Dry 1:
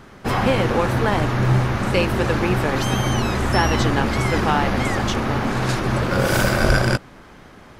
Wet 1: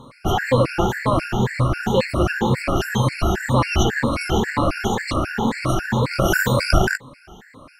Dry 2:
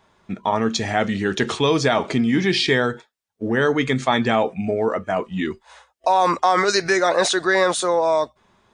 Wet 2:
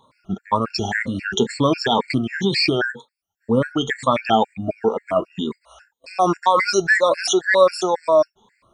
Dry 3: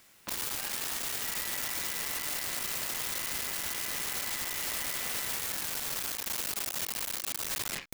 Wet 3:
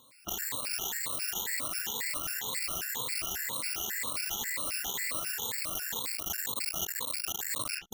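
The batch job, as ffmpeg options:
-af "afftfilt=real='re*pow(10,16/40*sin(2*PI*(1*log(max(b,1)*sr/1024/100)/log(2)-(2)*(pts-256)/sr)))':imag='im*pow(10,16/40*sin(2*PI*(1*log(max(b,1)*sr/1024/100)/log(2)-(2)*(pts-256)/sr)))':win_size=1024:overlap=0.75,afftfilt=real='re*gt(sin(2*PI*3.7*pts/sr)*(1-2*mod(floor(b*sr/1024/1400),2)),0)':imag='im*gt(sin(2*PI*3.7*pts/sr)*(1-2*mod(floor(b*sr/1024/1400),2)),0)':win_size=1024:overlap=0.75"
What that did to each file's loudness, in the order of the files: -1.0 LU, +0.5 LU, 0.0 LU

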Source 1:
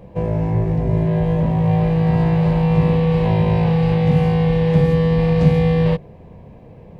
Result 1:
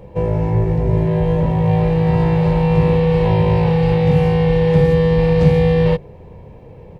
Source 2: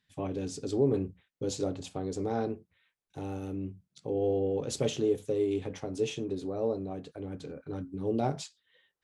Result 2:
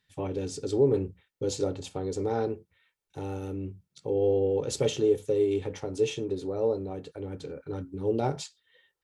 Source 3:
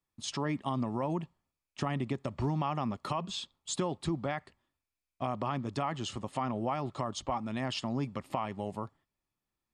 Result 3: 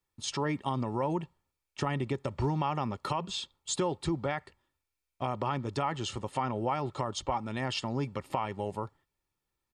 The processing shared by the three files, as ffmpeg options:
-af "aecho=1:1:2.2:0.38,volume=1.26"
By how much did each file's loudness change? +1.5 LU, +3.5 LU, +1.5 LU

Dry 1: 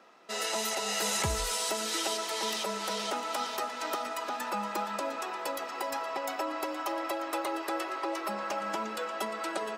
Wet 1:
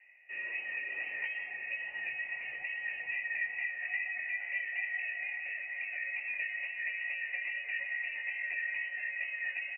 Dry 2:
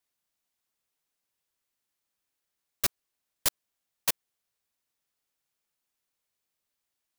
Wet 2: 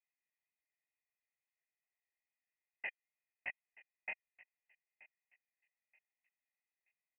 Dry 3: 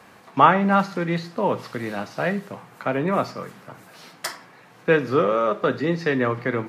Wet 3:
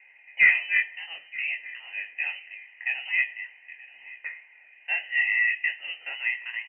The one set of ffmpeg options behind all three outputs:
-filter_complex "[0:a]asplit=3[s0][s1][s2];[s0]bandpass=f=730:t=q:w=8,volume=1[s3];[s1]bandpass=f=1090:t=q:w=8,volume=0.501[s4];[s2]bandpass=f=2440:t=q:w=8,volume=0.355[s5];[s3][s4][s5]amix=inputs=3:normalize=0,equalizer=f=1300:t=o:w=0.28:g=15,flanger=delay=17:depth=7.1:speed=2.3,highshelf=f=2300:g=-6.5,asoftclip=type=tanh:threshold=0.168,asplit=2[s6][s7];[s7]adelay=928,lowpass=f=1900:p=1,volume=0.112,asplit=2[s8][s9];[s9]adelay=928,lowpass=f=1900:p=1,volume=0.32,asplit=2[s10][s11];[s11]adelay=928,lowpass=f=1900:p=1,volume=0.32[s12];[s6][s8][s10][s12]amix=inputs=4:normalize=0,lowpass=f=2700:t=q:w=0.5098,lowpass=f=2700:t=q:w=0.6013,lowpass=f=2700:t=q:w=0.9,lowpass=f=2700:t=q:w=2.563,afreqshift=-3200,volume=1.88"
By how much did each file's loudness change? -2.5 LU, -16.0 LU, -2.5 LU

